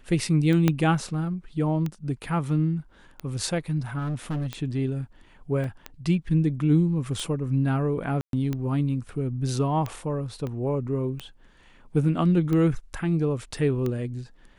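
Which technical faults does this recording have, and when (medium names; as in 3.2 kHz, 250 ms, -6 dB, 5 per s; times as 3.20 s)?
tick 45 rpm -17 dBFS
0.68 s: pop -8 dBFS
3.98–4.47 s: clipped -25 dBFS
5.64 s: dropout 2.5 ms
8.21–8.33 s: dropout 122 ms
10.47 s: pop -22 dBFS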